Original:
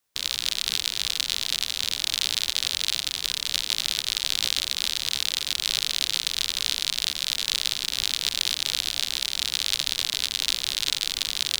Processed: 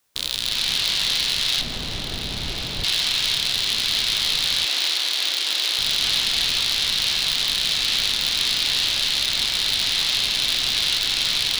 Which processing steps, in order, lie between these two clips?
reverberation, pre-delay 3 ms, DRR 1 dB; saturation -17.5 dBFS, distortion -6 dB; 1.61–2.84 s: tilt shelf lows +9.5 dB, about 820 Hz; 4.65–5.79 s: elliptic high-pass 280 Hz, stop band 50 dB; trim +7.5 dB

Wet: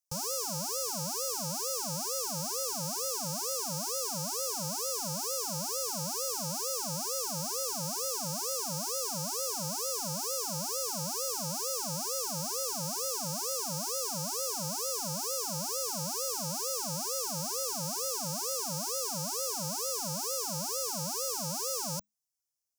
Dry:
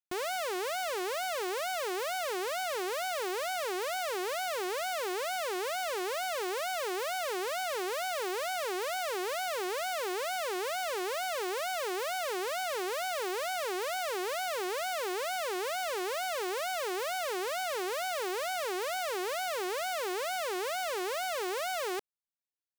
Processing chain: resonant high shelf 4.6 kHz +7.5 dB, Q 3; frequency shift -210 Hz; static phaser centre 780 Hz, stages 4

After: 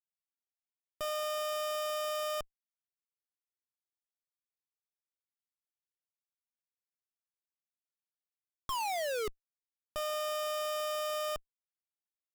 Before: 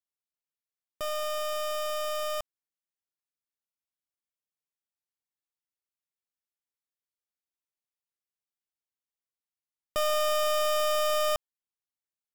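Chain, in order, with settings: painted sound fall, 8.69–9.28 s, 410–1100 Hz -34 dBFS; Schmitt trigger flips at -46 dBFS

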